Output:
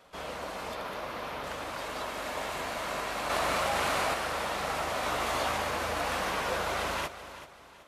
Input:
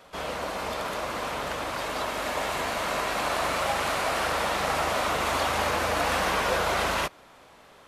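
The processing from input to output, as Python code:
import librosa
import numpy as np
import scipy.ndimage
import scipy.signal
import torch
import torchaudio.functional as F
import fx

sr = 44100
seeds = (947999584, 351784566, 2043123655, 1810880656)

y = fx.peak_eq(x, sr, hz=7900.0, db=-9.0, octaves=0.76, at=(0.75, 1.44))
y = fx.doubler(y, sr, ms=17.0, db=-3.0, at=(5.01, 5.57))
y = fx.echo_feedback(y, sr, ms=382, feedback_pct=36, wet_db=-13.5)
y = fx.env_flatten(y, sr, amount_pct=100, at=(3.29, 4.13), fade=0.02)
y = F.gain(torch.from_numpy(y), -6.0).numpy()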